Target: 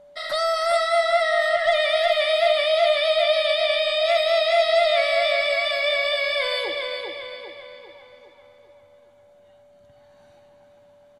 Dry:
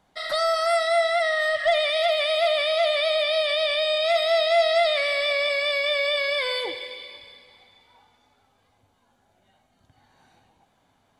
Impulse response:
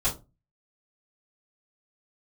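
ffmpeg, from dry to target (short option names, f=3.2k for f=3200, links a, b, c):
-filter_complex "[0:a]aeval=exprs='val(0)+0.00447*sin(2*PI*580*n/s)':c=same,asplit=2[a][b];[b]adelay=399,lowpass=f=3.5k:p=1,volume=-4dB,asplit=2[c][d];[d]adelay=399,lowpass=f=3.5k:p=1,volume=0.51,asplit=2[e][f];[f]adelay=399,lowpass=f=3.5k:p=1,volume=0.51,asplit=2[g][h];[h]adelay=399,lowpass=f=3.5k:p=1,volume=0.51,asplit=2[i][j];[j]adelay=399,lowpass=f=3.5k:p=1,volume=0.51,asplit=2[k][l];[l]adelay=399,lowpass=f=3.5k:p=1,volume=0.51,asplit=2[m][n];[n]adelay=399,lowpass=f=3.5k:p=1,volume=0.51[o];[a][c][e][g][i][k][m][o]amix=inputs=8:normalize=0,asplit=2[p][q];[1:a]atrim=start_sample=2205[r];[q][r]afir=irnorm=-1:irlink=0,volume=-30.5dB[s];[p][s]amix=inputs=2:normalize=0"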